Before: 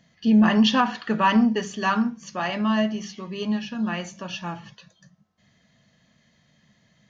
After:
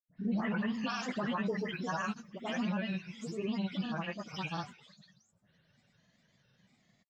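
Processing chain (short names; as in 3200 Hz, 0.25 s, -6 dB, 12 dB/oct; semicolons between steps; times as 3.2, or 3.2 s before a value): spectral delay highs late, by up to 0.314 s; limiter -20 dBFS, peak gain reduction 9.5 dB; grains, grains 20/s, pitch spread up and down by 3 st; gain -5.5 dB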